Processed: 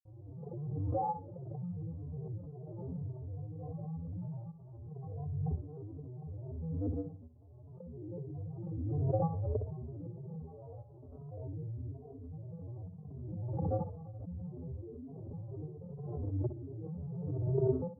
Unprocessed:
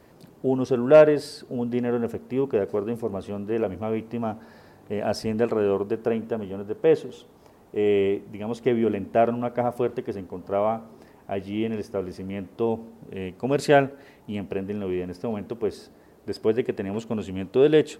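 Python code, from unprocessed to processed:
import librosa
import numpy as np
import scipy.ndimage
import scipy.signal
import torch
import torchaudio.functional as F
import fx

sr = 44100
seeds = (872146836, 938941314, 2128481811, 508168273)

y = fx.spec_trails(x, sr, decay_s=0.5)
y = fx.peak_eq(y, sr, hz=320.0, db=-9.5, octaves=1.2)
y = fx.level_steps(y, sr, step_db=23)
y = fx.vocoder(y, sr, bands=16, carrier='square', carrier_hz=118.0)
y = fx.granulator(y, sr, seeds[0], grain_ms=100.0, per_s=20.0, spray_ms=100.0, spread_st=7)
y = scipy.ndimage.gaussian_filter1d(y, 13.0, mode='constant')
y = fx.echo_feedback(y, sr, ms=62, feedback_pct=15, wet_db=-10)
y = fx.pre_swell(y, sr, db_per_s=25.0)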